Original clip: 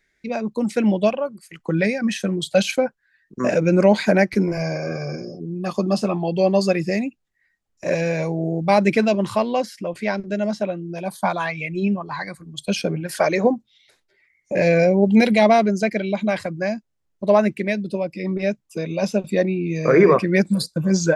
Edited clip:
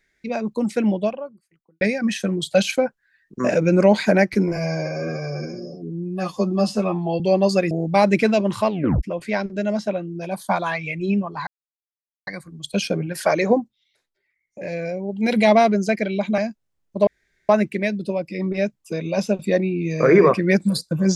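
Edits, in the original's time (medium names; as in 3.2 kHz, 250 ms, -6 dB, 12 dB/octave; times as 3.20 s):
0.54–1.81 s: studio fade out
4.56–6.32 s: stretch 1.5×
6.83–8.45 s: delete
9.42 s: tape stop 0.35 s
12.21 s: insert silence 0.80 s
13.51–15.33 s: dip -11.5 dB, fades 0.19 s
16.32–16.65 s: delete
17.34 s: insert room tone 0.42 s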